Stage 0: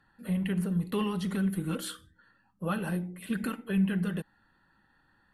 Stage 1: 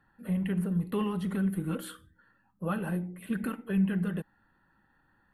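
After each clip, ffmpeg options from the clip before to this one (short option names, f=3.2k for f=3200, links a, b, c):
-af "equalizer=f=5.4k:w=0.83:g=-12"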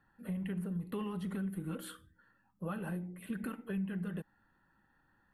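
-af "acompressor=threshold=-33dB:ratio=2.5,volume=-3.5dB"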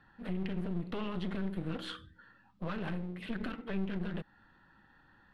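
-filter_complex "[0:a]asplit=2[a][b];[b]alimiter=level_in=11.5dB:limit=-24dB:level=0:latency=1:release=204,volume=-11.5dB,volume=3dB[c];[a][c]amix=inputs=2:normalize=0,aeval=exprs='clip(val(0),-1,0.00531)':c=same,lowpass=f=3.9k:t=q:w=1.8"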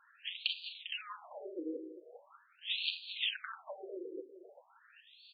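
-af "aexciter=amount=13.6:drive=5.8:freq=3k,aecho=1:1:399|798|1197|1596:0.282|0.0958|0.0326|0.0111,afftfilt=real='re*between(b*sr/1024,370*pow(3400/370,0.5+0.5*sin(2*PI*0.42*pts/sr))/1.41,370*pow(3400/370,0.5+0.5*sin(2*PI*0.42*pts/sr))*1.41)':imag='im*between(b*sr/1024,370*pow(3400/370,0.5+0.5*sin(2*PI*0.42*pts/sr))/1.41,370*pow(3400/370,0.5+0.5*sin(2*PI*0.42*pts/sr))*1.41)':win_size=1024:overlap=0.75,volume=2.5dB"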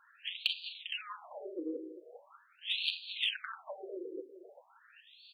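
-af "aeval=exprs='0.2*(cos(1*acos(clip(val(0)/0.2,-1,1)))-cos(1*PI/2))+0.00398*(cos(2*acos(clip(val(0)/0.2,-1,1)))-cos(2*PI/2))+0.00447*(cos(7*acos(clip(val(0)/0.2,-1,1)))-cos(7*PI/2))':c=same,volume=3dB"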